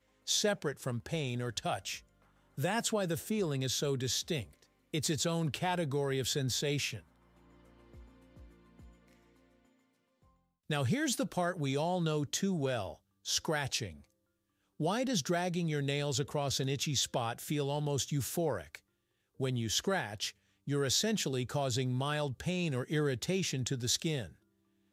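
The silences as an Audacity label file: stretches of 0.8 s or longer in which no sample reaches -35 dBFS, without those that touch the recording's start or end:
6.960000	10.700000	silence
13.870000	14.800000	silence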